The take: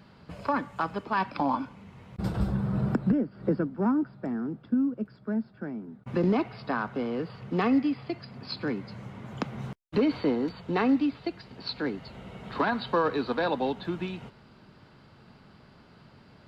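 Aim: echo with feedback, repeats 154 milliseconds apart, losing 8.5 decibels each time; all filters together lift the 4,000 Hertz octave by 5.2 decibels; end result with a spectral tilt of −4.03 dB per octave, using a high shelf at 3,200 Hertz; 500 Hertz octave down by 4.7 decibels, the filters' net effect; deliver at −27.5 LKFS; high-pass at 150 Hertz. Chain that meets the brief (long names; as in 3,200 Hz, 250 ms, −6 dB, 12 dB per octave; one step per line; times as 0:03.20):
high-pass filter 150 Hz
parametric band 500 Hz −6 dB
high-shelf EQ 3,200 Hz +3.5 dB
parametric band 4,000 Hz +3.5 dB
repeating echo 154 ms, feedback 38%, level −8.5 dB
level +3.5 dB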